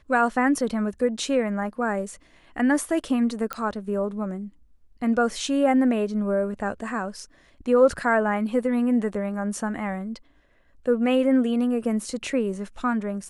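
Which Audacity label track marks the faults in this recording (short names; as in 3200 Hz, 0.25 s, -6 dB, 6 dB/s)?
3.530000	3.530000	pop -13 dBFS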